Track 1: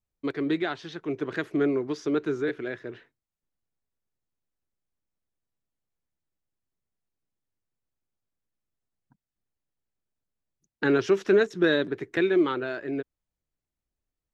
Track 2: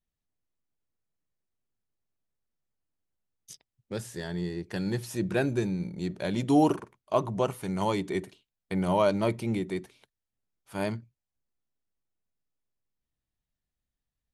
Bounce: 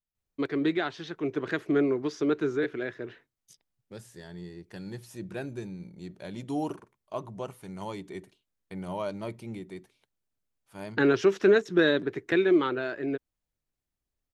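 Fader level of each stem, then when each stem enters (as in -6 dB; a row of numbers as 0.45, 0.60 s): 0.0, -9.5 dB; 0.15, 0.00 s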